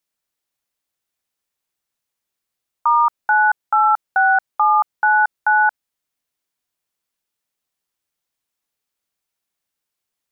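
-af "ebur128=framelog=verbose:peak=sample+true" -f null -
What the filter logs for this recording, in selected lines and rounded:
Integrated loudness:
  I:         -16.5 LUFS
  Threshold: -26.5 LUFS
Loudness range:
  LRA:         8.2 LU
  Threshold: -39.0 LUFS
  LRA low:   -24.7 LUFS
  LRA high:  -16.5 LUFS
Sample peak:
  Peak:       -7.8 dBFS
True peak:
  Peak:       -7.8 dBFS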